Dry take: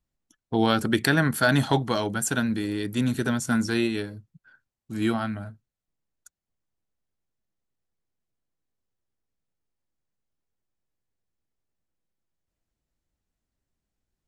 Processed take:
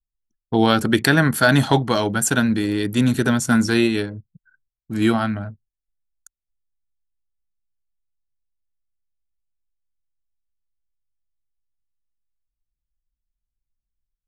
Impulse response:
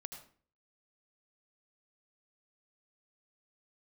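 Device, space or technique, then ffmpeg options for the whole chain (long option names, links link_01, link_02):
voice memo with heavy noise removal: -af "anlmdn=0.0631,dynaudnorm=framelen=110:gausssize=5:maxgain=5.5dB,volume=1.5dB"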